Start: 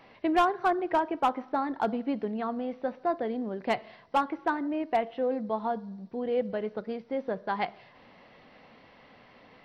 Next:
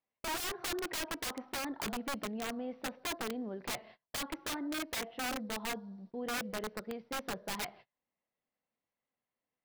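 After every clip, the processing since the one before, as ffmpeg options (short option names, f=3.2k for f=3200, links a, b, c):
-af "agate=range=-32dB:threshold=-46dB:ratio=16:detection=peak,aeval=exprs='(mod(17.8*val(0)+1,2)-1)/17.8':c=same,volume=-6.5dB"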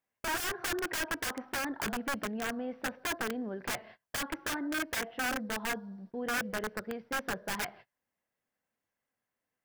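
-af "equalizer=f=100:t=o:w=0.33:g=5,equalizer=f=1.6k:t=o:w=0.33:g=8,equalizer=f=4k:t=o:w=0.33:g=-5,volume=2.5dB"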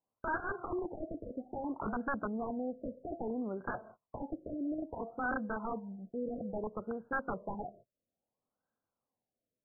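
-af "afftfilt=real='re*lt(b*sr/1024,680*pow(1700/680,0.5+0.5*sin(2*PI*0.6*pts/sr)))':imag='im*lt(b*sr/1024,680*pow(1700/680,0.5+0.5*sin(2*PI*0.6*pts/sr)))':win_size=1024:overlap=0.75"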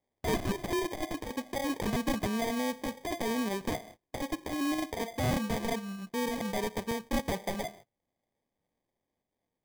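-af "acrusher=samples=32:mix=1:aa=0.000001,volume=5.5dB"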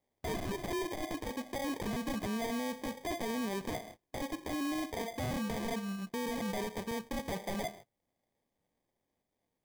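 -af "alimiter=level_in=7.5dB:limit=-24dB:level=0:latency=1:release=16,volume=-7.5dB,volume=1dB"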